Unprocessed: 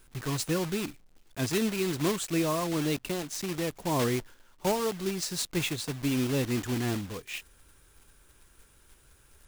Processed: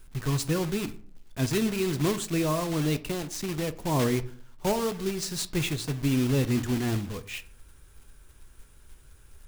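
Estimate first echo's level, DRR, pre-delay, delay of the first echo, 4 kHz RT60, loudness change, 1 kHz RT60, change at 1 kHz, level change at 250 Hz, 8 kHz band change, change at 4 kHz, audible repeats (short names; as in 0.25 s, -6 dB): none, 11.5 dB, 4 ms, none, 0.30 s, +2.0 dB, 0.50 s, +0.5 dB, +2.5 dB, 0.0 dB, 0.0 dB, none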